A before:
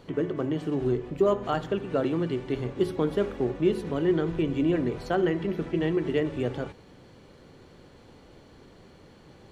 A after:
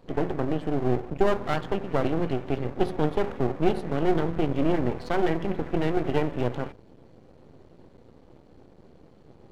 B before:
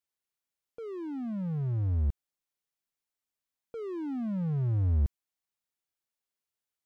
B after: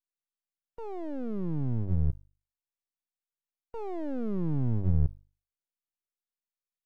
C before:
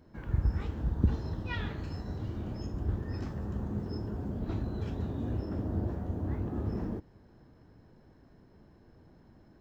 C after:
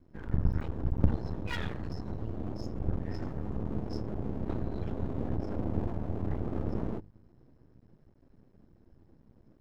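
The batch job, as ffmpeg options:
-af "afftdn=nr=13:nf=-49,bandreject=f=50:t=h:w=6,bandreject=f=100:t=h:w=6,aeval=exprs='max(val(0),0)':c=same,volume=5dB"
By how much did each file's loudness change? 0.0, -0.5, 0.0 LU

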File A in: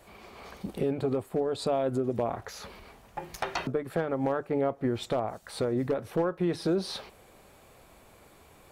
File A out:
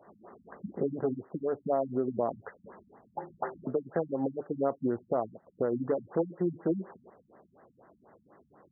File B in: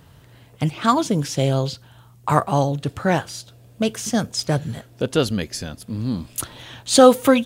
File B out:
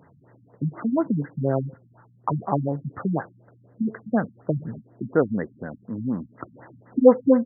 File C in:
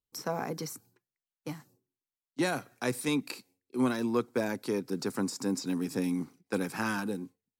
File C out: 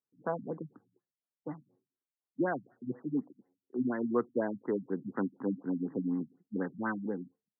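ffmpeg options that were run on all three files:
-af "highpass=180,lowpass=5.6k,afftfilt=real='re*lt(b*sr/1024,240*pow(2100/240,0.5+0.5*sin(2*PI*4.1*pts/sr)))':imag='im*lt(b*sr/1024,240*pow(2100/240,0.5+0.5*sin(2*PI*4.1*pts/sr)))':win_size=1024:overlap=0.75"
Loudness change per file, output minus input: -2.0, -4.5, -2.5 LU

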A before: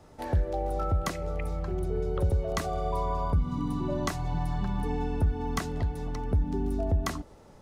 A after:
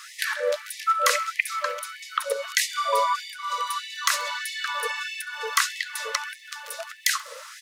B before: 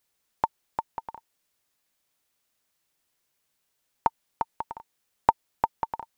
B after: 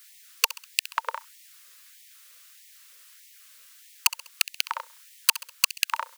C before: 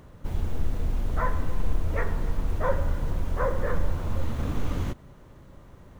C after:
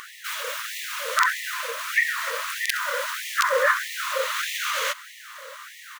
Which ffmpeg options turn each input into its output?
-filter_complex "[0:a]lowshelf=f=100:g=-11,asplit=2[a][b];[b]acompressor=threshold=-37dB:ratio=20,volume=1.5dB[c];[a][c]amix=inputs=2:normalize=0,aeval=exprs='(mod(5.62*val(0)+1,2)-1)/5.62':c=same,asuperstop=centerf=770:order=4:qfactor=1.2,asplit=2[d][e];[e]aecho=0:1:66|132|198:0.0631|0.0284|0.0128[f];[d][f]amix=inputs=2:normalize=0,alimiter=level_in=19.5dB:limit=-1dB:release=50:level=0:latency=1,afftfilt=real='re*gte(b*sr/1024,460*pow(1800/460,0.5+0.5*sin(2*PI*1.6*pts/sr)))':imag='im*gte(b*sr/1024,460*pow(1800/460,0.5+0.5*sin(2*PI*1.6*pts/sr)))':win_size=1024:overlap=0.75,volume=-2.5dB"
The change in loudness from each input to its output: +4.5, +5.0, +6.0 LU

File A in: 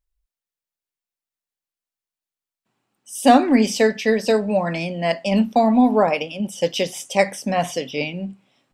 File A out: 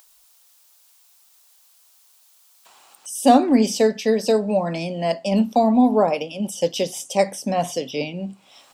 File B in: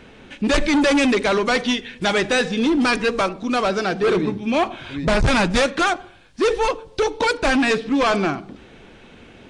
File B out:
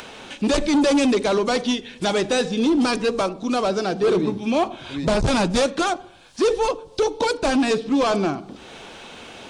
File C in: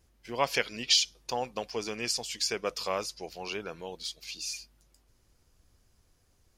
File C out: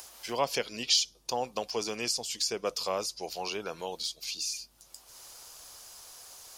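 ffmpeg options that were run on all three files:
-filter_complex "[0:a]equalizer=f=1.9k:w=1:g=-10,acrossover=split=690[a][b];[b]acompressor=mode=upward:threshold=-29dB:ratio=2.5[c];[a][c]amix=inputs=2:normalize=0,lowshelf=f=110:g=-7.5,volume=1dB"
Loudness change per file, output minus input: -1.0, -1.5, 0.0 LU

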